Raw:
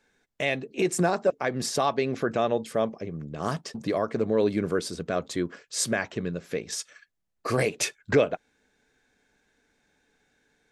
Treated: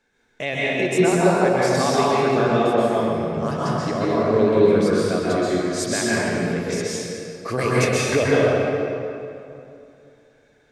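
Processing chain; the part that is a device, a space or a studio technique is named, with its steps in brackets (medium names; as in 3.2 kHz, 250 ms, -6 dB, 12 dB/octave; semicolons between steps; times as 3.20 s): swimming-pool hall (reverberation RT60 2.7 s, pre-delay 120 ms, DRR -7.5 dB; treble shelf 6 kHz -4.5 dB)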